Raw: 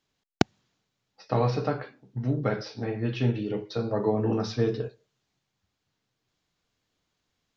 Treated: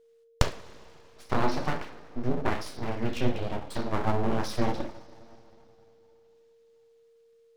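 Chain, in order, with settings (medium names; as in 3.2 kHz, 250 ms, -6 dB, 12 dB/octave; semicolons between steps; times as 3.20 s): two-slope reverb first 0.36 s, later 3.2 s, from -20 dB, DRR 3.5 dB; full-wave rectifier; whistle 460 Hz -58 dBFS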